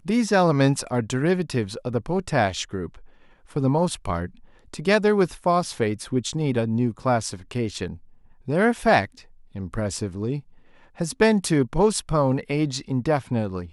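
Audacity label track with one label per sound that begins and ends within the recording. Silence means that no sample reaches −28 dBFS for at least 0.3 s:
3.560000	4.270000	sound
4.740000	7.930000	sound
8.480000	9.050000	sound
9.560000	10.390000	sound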